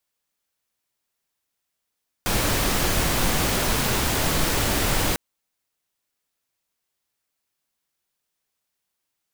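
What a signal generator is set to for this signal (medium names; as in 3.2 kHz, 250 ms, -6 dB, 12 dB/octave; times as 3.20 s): noise pink, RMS -22 dBFS 2.90 s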